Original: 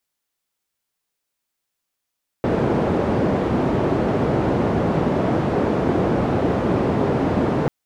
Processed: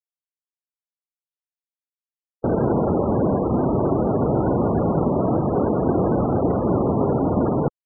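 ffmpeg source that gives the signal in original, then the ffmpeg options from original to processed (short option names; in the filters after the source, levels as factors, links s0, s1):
-f lavfi -i "anoisesrc=c=white:d=5.24:r=44100:seed=1,highpass=f=88,lowpass=f=450,volume=2.7dB"
-af "afftfilt=real='re*gte(hypot(re,im),0.0891)':imag='im*gte(hypot(re,im),0.0891)':win_size=1024:overlap=0.75"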